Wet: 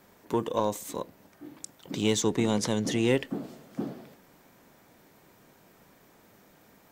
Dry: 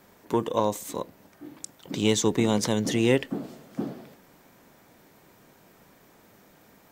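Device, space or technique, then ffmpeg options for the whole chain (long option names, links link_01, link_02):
parallel distortion: -filter_complex "[0:a]asplit=2[link_01][link_02];[link_02]asoftclip=type=hard:threshold=-23dB,volume=-12dB[link_03];[link_01][link_03]amix=inputs=2:normalize=0,asettb=1/sr,asplit=3[link_04][link_05][link_06];[link_04]atrim=end=2.224[link_07];[link_05]atrim=start=2.22:end=3.08,asetpts=PTS-STARTPTS,afade=type=in:duration=0.004:curve=qsin,afade=type=out:start_time=0.856:duration=0.004:curve=qsin,lowpass=12000[link_08];[link_06]atrim=start=3.076[link_09];[link_07][link_08]acrossfade=duration=0.004:curve1=hsin:curve2=qsin[link_10];[link_10][link_09]acrossfade=duration=0.004:curve1=qsin:curve2=hsin,volume=-4dB"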